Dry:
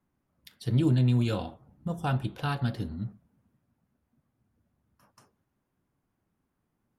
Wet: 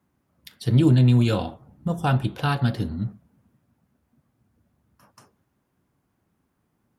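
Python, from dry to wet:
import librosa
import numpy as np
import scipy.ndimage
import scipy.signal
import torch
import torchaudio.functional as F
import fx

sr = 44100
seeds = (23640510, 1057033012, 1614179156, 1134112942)

y = scipy.signal.sosfilt(scipy.signal.butter(2, 45.0, 'highpass', fs=sr, output='sos'), x)
y = y * librosa.db_to_amplitude(7.0)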